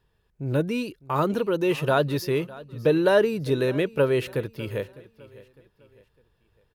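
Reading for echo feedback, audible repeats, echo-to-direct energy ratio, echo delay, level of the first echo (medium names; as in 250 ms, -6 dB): 38%, 2, -19.5 dB, 605 ms, -20.0 dB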